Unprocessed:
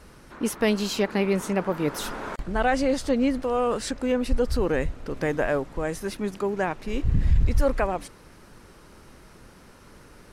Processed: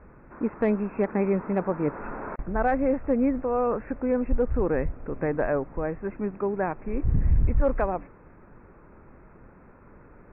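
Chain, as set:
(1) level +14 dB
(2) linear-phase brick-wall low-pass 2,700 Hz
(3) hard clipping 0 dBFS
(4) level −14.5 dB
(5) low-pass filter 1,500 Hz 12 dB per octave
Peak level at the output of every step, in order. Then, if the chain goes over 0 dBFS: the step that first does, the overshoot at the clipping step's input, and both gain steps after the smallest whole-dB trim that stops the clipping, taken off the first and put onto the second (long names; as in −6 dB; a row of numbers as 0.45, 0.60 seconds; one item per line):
+3.0, +3.0, 0.0, −14.5, −14.0 dBFS
step 1, 3.0 dB
step 1 +11 dB, step 4 −11.5 dB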